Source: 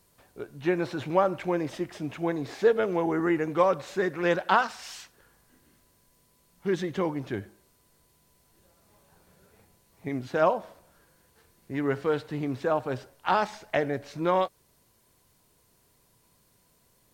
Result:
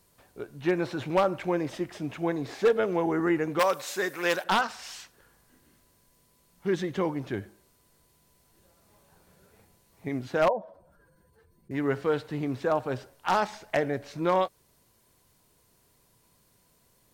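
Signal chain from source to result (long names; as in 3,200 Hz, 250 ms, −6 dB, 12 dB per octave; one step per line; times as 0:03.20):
0:10.48–0:11.71: expanding power law on the bin magnitudes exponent 1.9
wave folding −14.5 dBFS
0:03.59–0:04.44: RIAA equalisation recording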